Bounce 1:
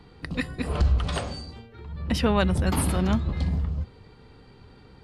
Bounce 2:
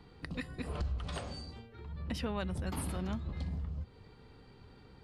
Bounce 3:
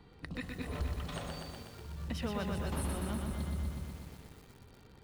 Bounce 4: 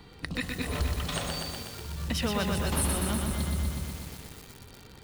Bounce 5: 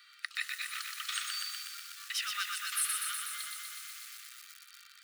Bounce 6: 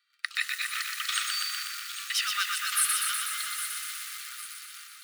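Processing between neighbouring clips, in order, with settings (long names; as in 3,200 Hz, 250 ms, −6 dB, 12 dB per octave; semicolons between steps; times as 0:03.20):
downward compressor 2 to 1, threshold −33 dBFS, peak gain reduction 9 dB; level −6 dB
notch filter 4,800 Hz, Q 13; feedback echo at a low word length 123 ms, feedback 80%, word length 9 bits, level −4 dB; level −1.5 dB
high-shelf EQ 2,400 Hz +9 dB; level +6.5 dB
Chebyshev high-pass filter 1,200 Hz, order 8
noise gate −55 dBFS, range −23 dB; delay that swaps between a low-pass and a high-pass 404 ms, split 2,300 Hz, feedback 63%, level −7 dB; level +6.5 dB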